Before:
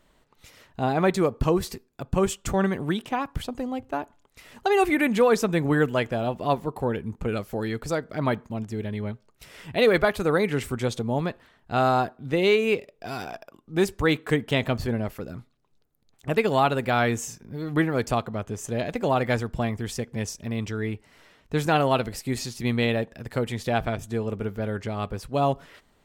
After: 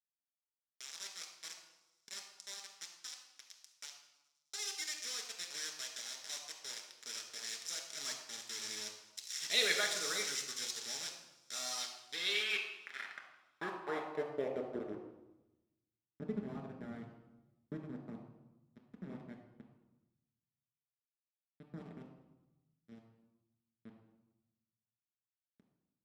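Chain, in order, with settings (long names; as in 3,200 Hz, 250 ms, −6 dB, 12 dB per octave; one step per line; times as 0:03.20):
source passing by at 0:09.59, 9 m/s, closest 4.4 metres
low-pass filter 9,600 Hz 24 dB per octave
low-shelf EQ 120 Hz −9 dB
hum removal 218.2 Hz, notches 18
in parallel at +3 dB: downward compressor 16 to 1, threshold −47 dBFS, peak gain reduction 31 dB
on the sum: bit reduction 6 bits
band-pass filter sweep 5,900 Hz → 210 Hz, 0:11.69–0:15.39
delay with a high-pass on its return 105 ms, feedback 74%, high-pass 4,000 Hz, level −23 dB
convolution reverb RT60 1.0 s, pre-delay 5 ms, DRR 0.5 dB
level +4.5 dB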